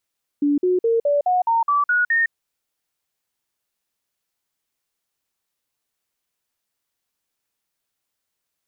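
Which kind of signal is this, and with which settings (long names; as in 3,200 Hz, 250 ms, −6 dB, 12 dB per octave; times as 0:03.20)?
stepped sweep 289 Hz up, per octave 3, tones 9, 0.16 s, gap 0.05 s −15 dBFS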